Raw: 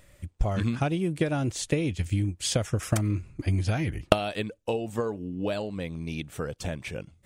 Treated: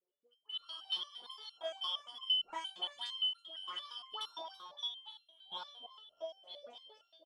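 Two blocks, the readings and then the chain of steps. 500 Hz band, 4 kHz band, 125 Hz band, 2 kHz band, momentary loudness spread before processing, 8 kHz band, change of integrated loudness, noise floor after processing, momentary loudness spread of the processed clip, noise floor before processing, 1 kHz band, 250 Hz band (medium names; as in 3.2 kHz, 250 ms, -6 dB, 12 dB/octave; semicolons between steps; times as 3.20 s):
-20.0 dB, +3.0 dB, under -40 dB, -20.0 dB, 9 LU, -26.5 dB, -10.0 dB, -79 dBFS, 19 LU, -61 dBFS, -11.5 dB, under -35 dB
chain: four frequency bands reordered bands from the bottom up 3412; waveshaping leveller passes 2; auto-wah 420–1100 Hz, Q 9.5, up, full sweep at -15.5 dBFS; low-pass 8.7 kHz; peaking EQ 77 Hz -5.5 dB 1.5 oct; phase dispersion highs, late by 98 ms, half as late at 1.2 kHz; level rider gain up to 6 dB; dynamic bell 4.4 kHz, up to +4 dB, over -54 dBFS, Q 1.4; in parallel at -6 dB: sine folder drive 5 dB, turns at -21.5 dBFS; on the sum: delay 332 ms -11 dB; resonator arpeggio 8.7 Hz 180–1400 Hz; trim +4 dB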